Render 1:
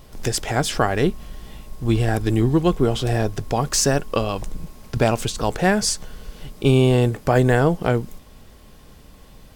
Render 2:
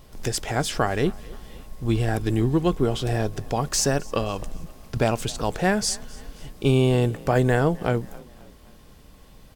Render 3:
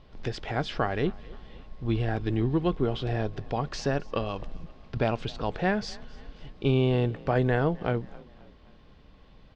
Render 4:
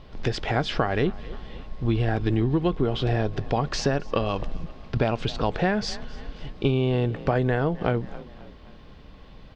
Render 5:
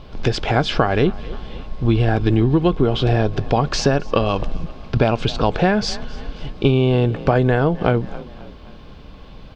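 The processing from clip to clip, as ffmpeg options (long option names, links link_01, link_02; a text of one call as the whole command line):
ffmpeg -i in.wav -filter_complex "[0:a]asplit=4[link_01][link_02][link_03][link_04];[link_02]adelay=263,afreqshift=33,volume=-23dB[link_05];[link_03]adelay=526,afreqshift=66,volume=-29.4dB[link_06];[link_04]adelay=789,afreqshift=99,volume=-35.8dB[link_07];[link_01][link_05][link_06][link_07]amix=inputs=4:normalize=0,volume=-3.5dB" out.wav
ffmpeg -i in.wav -af "lowpass=frequency=4200:width=0.5412,lowpass=frequency=4200:width=1.3066,volume=-4.5dB" out.wav
ffmpeg -i in.wav -af "acompressor=threshold=-26dB:ratio=6,volume=7.5dB" out.wav
ffmpeg -i in.wav -af "bandreject=frequency=1900:width=8.9,volume=7dB" out.wav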